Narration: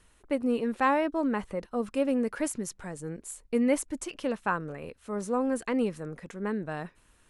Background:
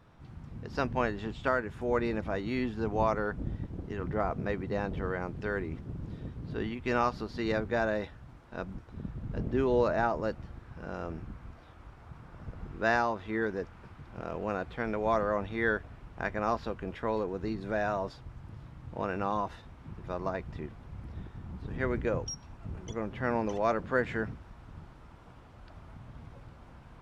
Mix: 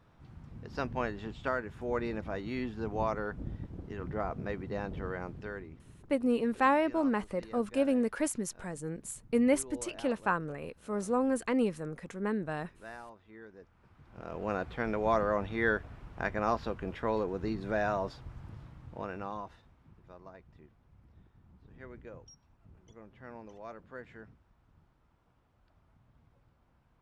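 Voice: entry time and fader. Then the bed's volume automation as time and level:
5.80 s, −1.0 dB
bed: 0:05.30 −4 dB
0:06.13 −19.5 dB
0:13.51 −19.5 dB
0:14.52 0 dB
0:18.44 0 dB
0:20.25 −17.5 dB

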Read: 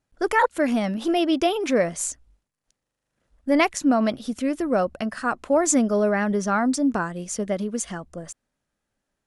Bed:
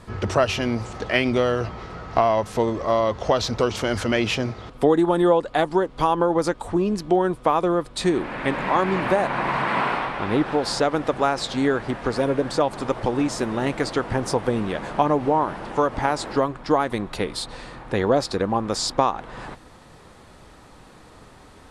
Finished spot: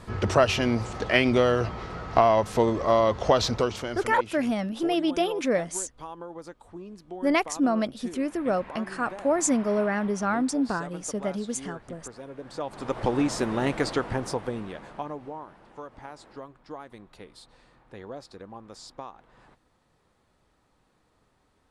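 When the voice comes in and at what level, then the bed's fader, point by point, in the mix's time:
3.75 s, −4.0 dB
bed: 0:03.48 −0.5 dB
0:04.36 −20 dB
0:12.30 −20 dB
0:13.05 −2 dB
0:13.89 −2 dB
0:15.50 −20.5 dB

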